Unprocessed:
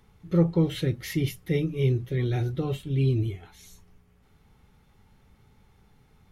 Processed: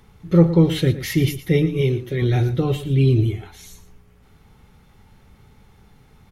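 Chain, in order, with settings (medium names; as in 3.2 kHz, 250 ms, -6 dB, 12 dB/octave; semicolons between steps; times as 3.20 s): 1.81–2.22 s: bass shelf 190 Hz -9 dB; delay 115 ms -13.5 dB; trim +8 dB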